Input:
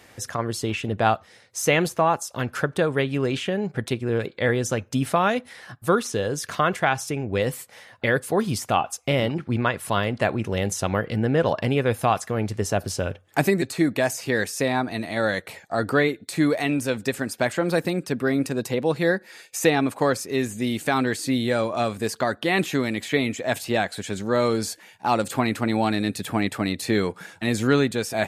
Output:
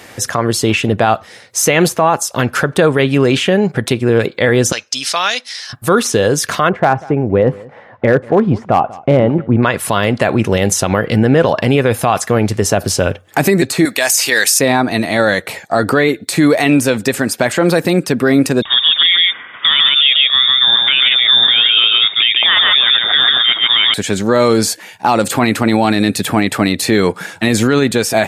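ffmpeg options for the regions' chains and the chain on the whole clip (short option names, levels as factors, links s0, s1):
-filter_complex "[0:a]asettb=1/sr,asplit=3[s0][s1][s2];[s0]atrim=end=4.724[s3];[s1]atrim=start=4.72:end=5.73,asetpts=PTS-STARTPTS,afade=t=in:d=0.004:c=qsin,afade=t=out:st=1.006:d=0.004:c=qsin,aderivative,acontrast=72,lowpass=f=5200:t=q:w=3[s4];[s2]atrim=start=5.726[s5];[s3][s4]acrossfade=d=0.004:c1=hsin:c2=qsin[s6];[s6][s5]acrossfade=d=0.004:c1=qsin:c2=hsin,asettb=1/sr,asplit=3[s7][s8][s9];[s7]atrim=end=6.694[s10];[s8]atrim=start=6.69:end=9.63,asetpts=PTS-STARTPTS,afade=t=in:d=0.004:c=qsin,afade=t=out:st=2.936:d=0.004:c=qsin,lowpass=1100,asoftclip=type=hard:threshold=0.188,aecho=1:1:190:0.0708,atrim=end_sample=129654[s11];[s9]atrim=start=9.626[s12];[s10][s11]acrossfade=d=0.004:c1=hsin:c2=qsin[s13];[s13][s12]acrossfade=d=0.004:c1=qsin:c2=hsin,asettb=1/sr,asplit=3[s14][s15][s16];[s14]atrim=end=13.854[s17];[s15]atrim=start=13.85:end=14.59,asetpts=PTS-STARTPTS,afade=t=in:d=0.004:c=qsin,afade=t=out:st=0.736:d=0.004:c=qsin,highpass=f=790:p=1,highshelf=f=2100:g=11.5[s18];[s16]atrim=start=14.586[s19];[s17][s18]acrossfade=d=0.004:c1=hsin:c2=qsin[s20];[s20][s19]acrossfade=d=0.004:c1=qsin:c2=hsin,asettb=1/sr,asplit=3[s21][s22][s23];[s21]atrim=end=18.624[s24];[s22]atrim=start=18.62:end=23.94,asetpts=PTS-STARTPTS,afade=t=in:d=0.004:c=qsin,afade=t=out:st=5.316:d=0.004:c=qsin,lowpass=f=3200:t=q:w=0.5098,lowpass=f=3200:t=q:w=0.6013,lowpass=f=3200:t=q:w=0.9,lowpass=f=3200:t=q:w=2.563,afreqshift=-3800,aecho=1:1:142:0.668,atrim=end_sample=234612[s25];[s23]atrim=start=23.936[s26];[s24][s25]acrossfade=d=0.004:c1=hsin:c2=qsin[s27];[s27][s26]acrossfade=d=0.004:c1=qsin:c2=hsin,highpass=f=99:p=1,alimiter=level_in=5.62:limit=0.891:release=50:level=0:latency=1,volume=0.891"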